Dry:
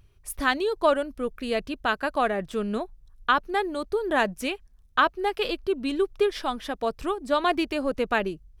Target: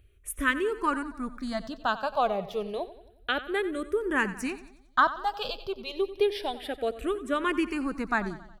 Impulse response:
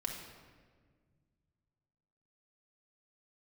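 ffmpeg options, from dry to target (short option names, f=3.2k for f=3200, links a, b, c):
-filter_complex "[0:a]asplit=2[a][b];[b]aecho=0:1:91|182|273|364|455:0.178|0.0907|0.0463|0.0236|0.012[c];[a][c]amix=inputs=2:normalize=0,asplit=2[d][e];[e]afreqshift=-0.29[f];[d][f]amix=inputs=2:normalize=1"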